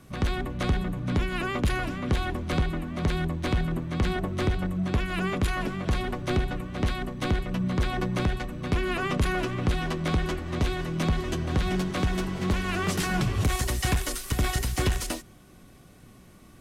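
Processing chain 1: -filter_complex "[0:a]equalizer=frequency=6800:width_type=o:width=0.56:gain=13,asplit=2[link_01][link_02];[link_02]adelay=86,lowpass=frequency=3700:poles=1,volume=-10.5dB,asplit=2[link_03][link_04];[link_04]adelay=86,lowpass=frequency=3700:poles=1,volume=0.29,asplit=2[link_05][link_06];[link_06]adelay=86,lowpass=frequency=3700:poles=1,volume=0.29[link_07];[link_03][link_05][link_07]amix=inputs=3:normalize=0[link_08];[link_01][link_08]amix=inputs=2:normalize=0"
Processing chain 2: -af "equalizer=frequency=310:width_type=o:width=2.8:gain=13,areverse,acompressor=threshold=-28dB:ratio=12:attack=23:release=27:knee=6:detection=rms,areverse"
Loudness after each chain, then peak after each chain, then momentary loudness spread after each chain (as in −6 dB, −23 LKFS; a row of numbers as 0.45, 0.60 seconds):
−27.0, −29.0 LKFS; −13.0, −17.0 dBFS; 5, 2 LU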